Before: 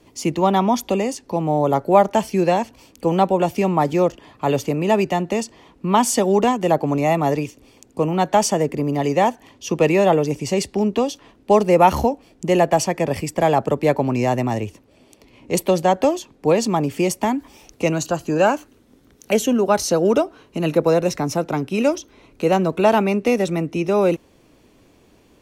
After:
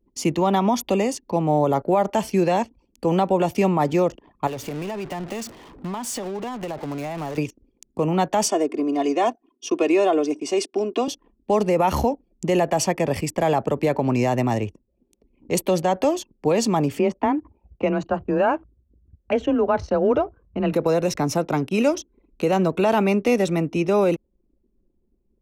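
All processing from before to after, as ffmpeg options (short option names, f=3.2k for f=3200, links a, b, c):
-filter_complex "[0:a]asettb=1/sr,asplit=3[a][b][c];[a]atrim=end=4.474[d];[b]atrim=start=4.47:end=7.38,asetpts=PTS-STARTPTS,afade=t=in:d=0.004:c=qsin,afade=t=out:st=2.906:d=0.004:c=qsin,aeval=exprs='val(0)+0.5*0.1*sgn(val(0))':c=same,agate=range=-33dB:threshold=-17dB:ratio=3:release=100:detection=peak,acompressor=threshold=-26dB:ratio=12:attack=3.2:release=140:knee=1:detection=peak[e];[c]atrim=start=7.376[f];[d][e]acrossfade=d=0.004:c1=hsin:c2=qsin[g];[g][f]acrossfade=d=0.004:c1=qsin:c2=hsin,asettb=1/sr,asplit=3[h][i][j];[h]atrim=end=8.484[k];[i]atrim=start=8.48:end=11.08,asetpts=PTS-STARTPTS,afade=t=in:d=0.004:c=qsin,afade=t=out:st=2.596:d=0.004:c=qsin,highpass=f=260:w=0.5412,highpass=f=260:w=1.3066,equalizer=f=430:t=q:w=4:g=-4,equalizer=f=850:t=q:w=4:g=-7,equalizer=f=1.9k:t=q:w=4:g=-9,equalizer=f=3k:t=q:w=4:g=-3,equalizer=f=4.4k:t=q:w=4:g=-5,equalizer=f=7k:t=q:w=4:g=-7,lowpass=f=9.2k:w=0.5412,lowpass=f=9.2k:w=1.3066,aecho=1:1:2.8:0.61,atrim=end_sample=114660[l];[j]atrim=start=11.076[m];[k][l]acrossfade=d=0.004:c1=hsin:c2=qsin[n];[n][m]acrossfade=d=0.004:c1=qsin:c2=hsin,asettb=1/sr,asplit=3[o][p][q];[o]atrim=end=16.994[r];[p]atrim=start=16.99:end=20.73,asetpts=PTS-STARTPTS,afade=t=in:d=0.004:c=qsin,afade=t=out:st=3.736:d=0.004:c=qsin,asubboost=boost=6.5:cutoff=91,lowpass=2k,afreqshift=23[s];[q]atrim=start=20.726[t];[r][s]acrossfade=d=0.004:c1=hsin:c2=qsin[u];[u][t]acrossfade=d=0.004:c1=qsin:c2=hsin,anlmdn=0.398,alimiter=limit=-10.5dB:level=0:latency=1:release=58"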